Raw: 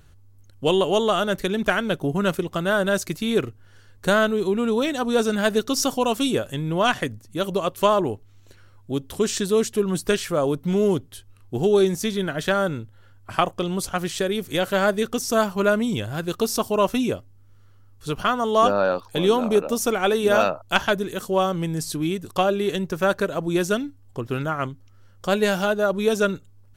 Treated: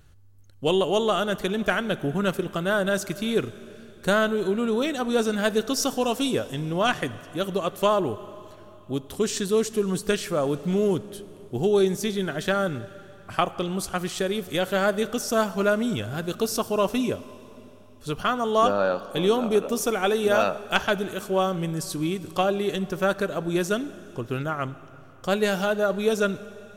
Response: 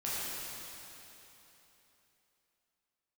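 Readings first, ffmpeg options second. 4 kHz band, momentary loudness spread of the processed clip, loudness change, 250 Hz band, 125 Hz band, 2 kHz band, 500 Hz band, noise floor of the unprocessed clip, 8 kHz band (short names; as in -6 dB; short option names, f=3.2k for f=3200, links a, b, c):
-2.5 dB, 10 LU, -2.5 dB, -2.5 dB, -2.5 dB, -2.5 dB, -2.5 dB, -51 dBFS, -2.5 dB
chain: -filter_complex "[0:a]bandreject=f=980:w=23,asplit=2[a][b];[1:a]atrim=start_sample=2205,adelay=16[c];[b][c]afir=irnorm=-1:irlink=0,volume=-21dB[d];[a][d]amix=inputs=2:normalize=0,volume=-2.5dB"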